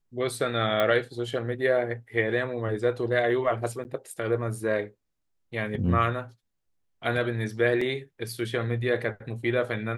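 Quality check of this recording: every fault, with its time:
0:00.80: click −13 dBFS
0:03.84–0:03.85: drop-out 9.4 ms
0:07.81: drop-out 4.1 ms

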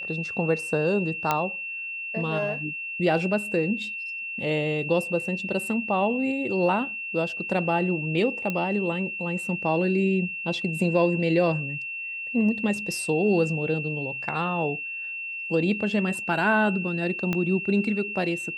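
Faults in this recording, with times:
whistle 2,700 Hz −31 dBFS
0:01.31: click −8 dBFS
0:08.50: click −15 dBFS
0:17.33: click −13 dBFS

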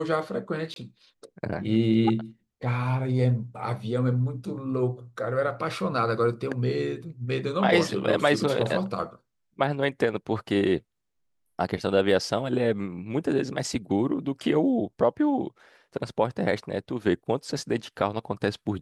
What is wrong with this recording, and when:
0:00.74–0:00.76: drop-out 22 ms

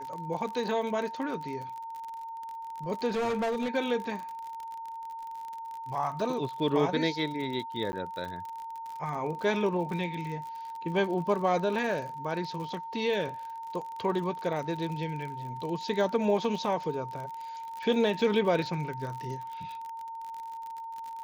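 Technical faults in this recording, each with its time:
surface crackle 46 per second −36 dBFS
whistle 910 Hz −37 dBFS
0:03.09–0:03.69: clipping −26.5 dBFS
0:07.92–0:07.93: drop-out 10 ms

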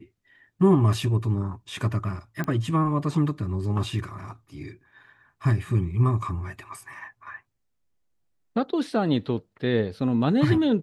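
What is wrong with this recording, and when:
0:02.44: click −17 dBFS

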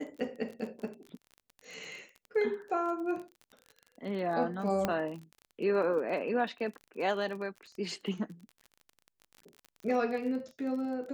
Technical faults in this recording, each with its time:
surface crackle 30 per second −40 dBFS
0:04.85: click −15 dBFS

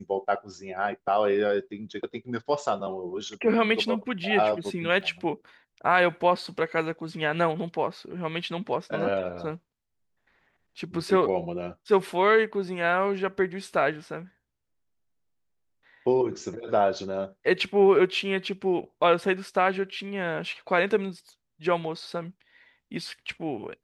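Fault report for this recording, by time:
0:05.01: drop-out 2.5 ms

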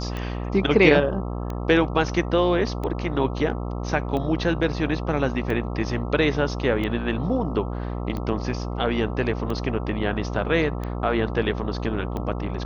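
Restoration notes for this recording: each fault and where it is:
mains buzz 60 Hz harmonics 22 −29 dBFS
scratch tick 45 rpm −18 dBFS

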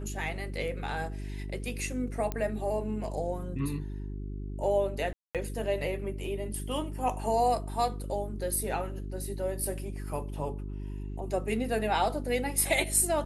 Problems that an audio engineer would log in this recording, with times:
mains hum 50 Hz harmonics 8 −37 dBFS
0:02.32: click −18 dBFS
0:05.13–0:05.35: drop-out 217 ms

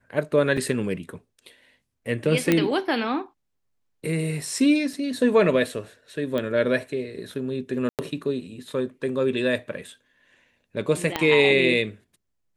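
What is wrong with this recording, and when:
0:00.57: drop-out 4.2 ms
0:02.52: click −6 dBFS
0:04.93: drop-out 2.9 ms
0:06.38: click −16 dBFS
0:07.89–0:07.99: drop-out 98 ms
0:11.16: click −9 dBFS

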